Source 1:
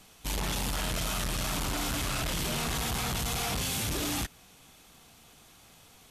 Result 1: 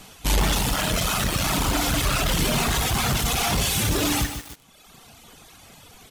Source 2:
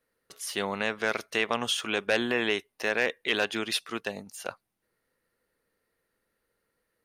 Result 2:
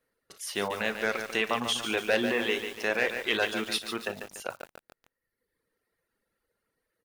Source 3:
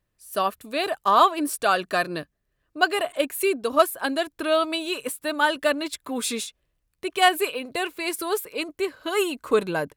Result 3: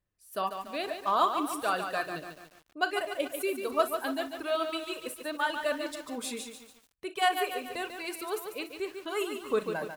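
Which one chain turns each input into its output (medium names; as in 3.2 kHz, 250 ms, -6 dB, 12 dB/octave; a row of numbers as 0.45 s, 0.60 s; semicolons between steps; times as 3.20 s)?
treble shelf 2.9 kHz -2 dB; early reflections 37 ms -12.5 dB, 59 ms -9 dB; reverb removal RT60 1.3 s; bit-crushed delay 144 ms, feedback 55%, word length 7-bit, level -7 dB; peak normalisation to -12 dBFS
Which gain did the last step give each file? +11.5 dB, 0.0 dB, -8.0 dB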